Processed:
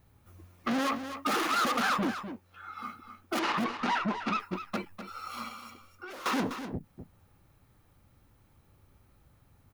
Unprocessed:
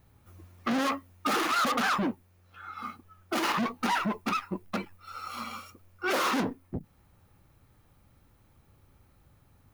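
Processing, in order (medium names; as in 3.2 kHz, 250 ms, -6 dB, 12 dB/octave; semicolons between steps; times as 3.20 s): 3.39–4.40 s: low-pass 4.9 kHz 12 dB/octave; 5.48–6.26 s: compression 10:1, threshold -41 dBFS, peak gain reduction 16 dB; delay 250 ms -10 dB; trim -1.5 dB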